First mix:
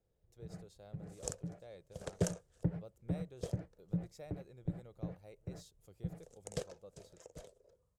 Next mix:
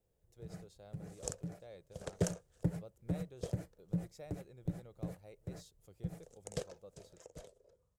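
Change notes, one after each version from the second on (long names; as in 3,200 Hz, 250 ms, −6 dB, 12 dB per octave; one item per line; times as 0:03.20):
first sound: remove high-frequency loss of the air 380 metres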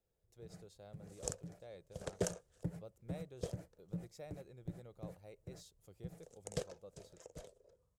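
first sound −7.0 dB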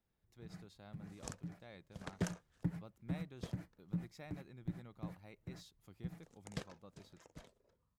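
second sound −4.0 dB
master: add octave-band graphic EQ 250/500/1,000/2,000/4,000/8,000 Hz +10/−11/+7/+6/+3/−6 dB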